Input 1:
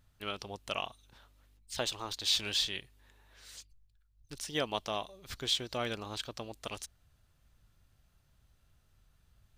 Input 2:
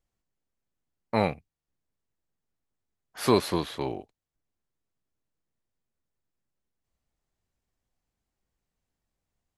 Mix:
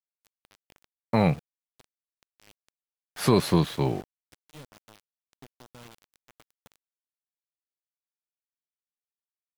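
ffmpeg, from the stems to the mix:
-filter_complex "[0:a]volume=35.5dB,asoftclip=hard,volume=-35.5dB,volume=-9dB[a];[1:a]volume=2.5dB,asplit=2[b][c];[c]apad=whole_len=422410[d];[a][d]sidechaincompress=threshold=-23dB:ratio=5:attack=16:release=983[e];[e][b]amix=inputs=2:normalize=0,equalizer=f=150:t=o:w=0.93:g=11.5,aeval=exprs='val(0)*gte(abs(val(0)),0.00944)':c=same,alimiter=limit=-9dB:level=0:latency=1:release=17"

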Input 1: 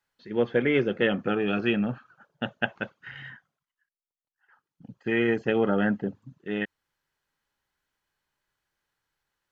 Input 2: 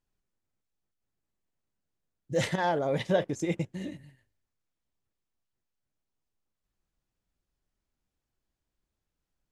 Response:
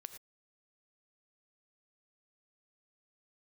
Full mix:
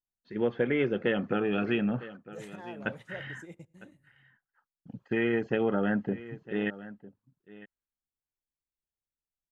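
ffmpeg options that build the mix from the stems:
-filter_complex "[0:a]agate=range=-33dB:threshold=-52dB:ratio=3:detection=peak,adelay=50,volume=1.5dB,asplit=3[a][b][c];[a]atrim=end=2.17,asetpts=PTS-STARTPTS,afade=t=out:st=2.166:d=0.004:c=hsin[d];[b]atrim=start=2.17:end=2.8,asetpts=PTS-STARTPTS,volume=0[e];[c]atrim=start=2.8,asetpts=PTS-STARTPTS,afade=t=in:d=0.004:c=hsin[f];[d][e][f]concat=n=3:v=0:a=1,asplit=2[g][h];[h]volume=-21dB[i];[1:a]aexciter=amount=4.1:drive=6.5:freq=7k,volume=-18.5dB,asplit=2[j][k];[k]volume=-12.5dB[l];[2:a]atrim=start_sample=2205[m];[l][m]afir=irnorm=-1:irlink=0[n];[i]aecho=0:1:954:1[o];[g][j][n][o]amix=inputs=4:normalize=0,highshelf=f=5k:g=-10.5,acompressor=threshold=-27dB:ratio=2"

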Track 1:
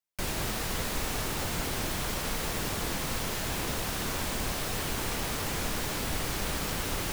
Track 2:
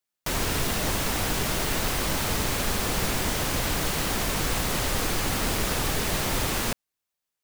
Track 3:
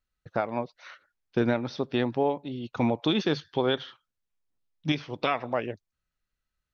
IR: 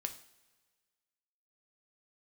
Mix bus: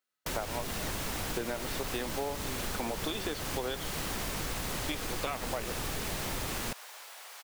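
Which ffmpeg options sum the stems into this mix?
-filter_complex "[0:a]highpass=f=640:w=0.5412,highpass=f=640:w=1.3066,adelay=1050,volume=-13dB[a];[1:a]volume=-6dB[b];[2:a]highpass=370,volume=0dB[c];[a][b][c]amix=inputs=3:normalize=0,acompressor=threshold=-31dB:ratio=6"

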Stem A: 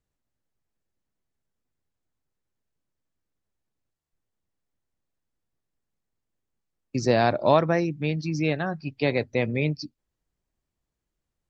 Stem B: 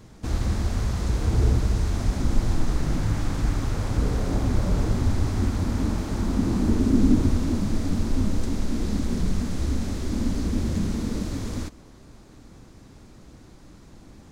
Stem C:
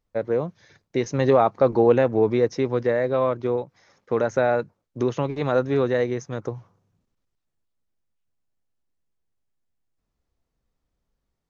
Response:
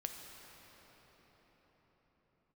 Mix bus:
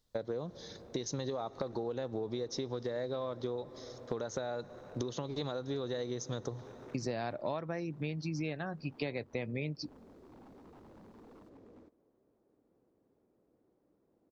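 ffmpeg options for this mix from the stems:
-filter_complex "[0:a]volume=-1dB[a];[1:a]bandpass=f=460:t=q:w=2:csg=0,aeval=exprs='0.0168*(abs(mod(val(0)/0.0168+3,4)-2)-1)':c=same,adelay=200,volume=-15.5dB[b];[2:a]highshelf=f=3k:t=q:w=3:g=7,acompressor=threshold=-22dB:ratio=6,volume=-2.5dB,asplit=2[c][d];[d]volume=-14dB[e];[3:a]atrim=start_sample=2205[f];[e][f]afir=irnorm=-1:irlink=0[g];[a][b][c][g]amix=inputs=4:normalize=0,acompressor=threshold=-34dB:ratio=6"

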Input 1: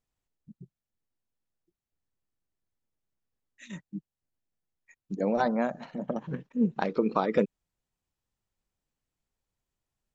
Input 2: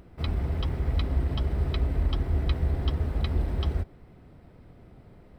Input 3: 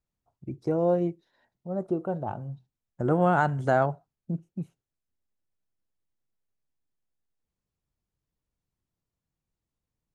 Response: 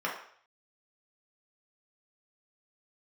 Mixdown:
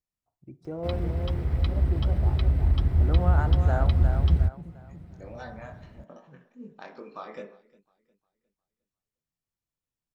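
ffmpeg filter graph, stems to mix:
-filter_complex "[0:a]flanger=delay=20:depth=3.5:speed=2.4,highshelf=f=2.5k:g=12,volume=-16.5dB,asplit=3[a][b][c];[b]volume=-7.5dB[d];[c]volume=-19dB[e];[1:a]highpass=58,asubboost=boost=4:cutoff=200,adelay=650,volume=-2dB[f];[2:a]volume=-10dB,asplit=3[g][h][i];[h]volume=-19dB[j];[i]volume=-5.5dB[k];[3:a]atrim=start_sample=2205[l];[d][j]amix=inputs=2:normalize=0[m];[m][l]afir=irnorm=-1:irlink=0[n];[e][k]amix=inputs=2:normalize=0,aecho=0:1:356|712|1068|1424|1780:1|0.35|0.122|0.0429|0.015[o];[a][f][g][n][o]amix=inputs=5:normalize=0"

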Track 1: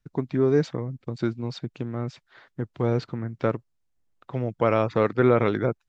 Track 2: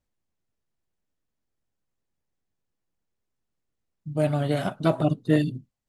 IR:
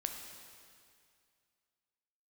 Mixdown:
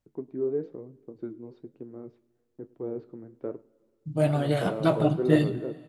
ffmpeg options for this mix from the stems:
-filter_complex "[0:a]agate=range=-18dB:threshold=-45dB:ratio=16:detection=peak,bandpass=f=370:t=q:w=2:csg=0,volume=-2.5dB,asplit=3[a][b][c];[b]volume=-19dB[d];[c]volume=-23.5dB[e];[1:a]volume=1dB,asplit=2[f][g];[g]volume=-7.5dB[h];[2:a]atrim=start_sample=2205[i];[d][h]amix=inputs=2:normalize=0[j];[j][i]afir=irnorm=-1:irlink=0[k];[e]aecho=0:1:103:1[l];[a][f][k][l]amix=inputs=4:normalize=0,flanger=delay=8.3:depth=9.4:regen=-61:speed=1.1:shape=triangular"

